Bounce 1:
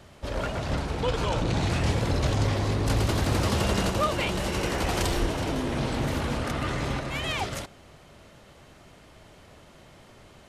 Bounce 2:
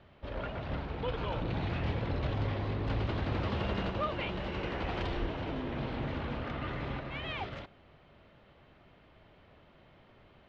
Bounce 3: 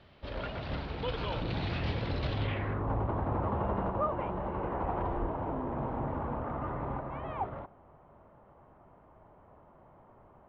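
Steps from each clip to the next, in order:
low-pass filter 3,500 Hz 24 dB per octave; level −8 dB
low-pass filter sweep 4,800 Hz → 970 Hz, 0:02.32–0:02.88

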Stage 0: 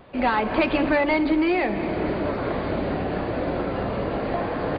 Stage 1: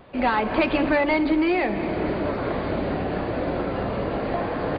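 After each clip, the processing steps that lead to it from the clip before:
no processing that can be heard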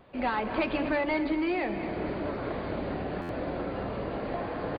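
single-tap delay 237 ms −13.5 dB
buffer that repeats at 0:03.21, samples 512, times 6
level −7.5 dB

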